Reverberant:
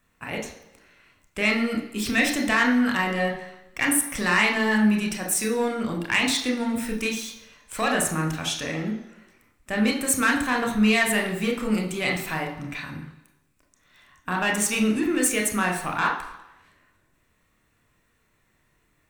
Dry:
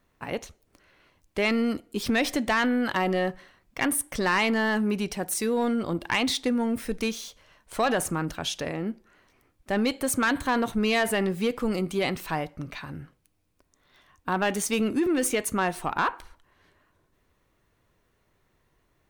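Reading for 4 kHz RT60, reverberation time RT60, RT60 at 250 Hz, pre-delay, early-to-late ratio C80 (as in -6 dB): 0.95 s, 1.0 s, 0.85 s, 26 ms, 10.5 dB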